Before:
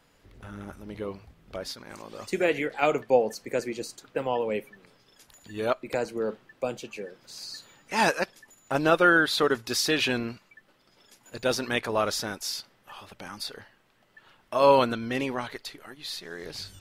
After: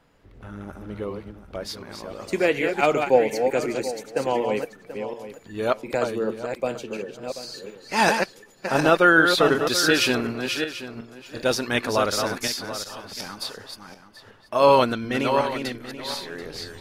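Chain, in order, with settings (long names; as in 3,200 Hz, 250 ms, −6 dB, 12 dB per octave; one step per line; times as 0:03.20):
feedback delay that plays each chunk backwards 367 ms, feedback 43%, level −5.5 dB
one half of a high-frequency compander decoder only
level +3.5 dB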